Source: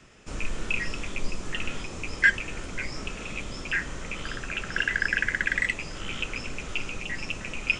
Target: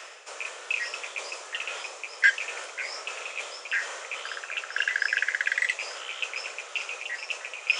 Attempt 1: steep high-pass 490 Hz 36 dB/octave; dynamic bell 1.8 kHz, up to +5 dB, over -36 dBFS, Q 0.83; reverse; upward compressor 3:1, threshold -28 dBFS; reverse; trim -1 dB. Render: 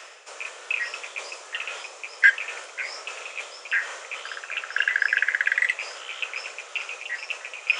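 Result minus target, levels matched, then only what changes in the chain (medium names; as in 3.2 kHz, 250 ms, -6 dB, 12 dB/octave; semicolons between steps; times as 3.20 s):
4 kHz band -3.0 dB
change: dynamic bell 5.2 kHz, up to +5 dB, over -36 dBFS, Q 0.83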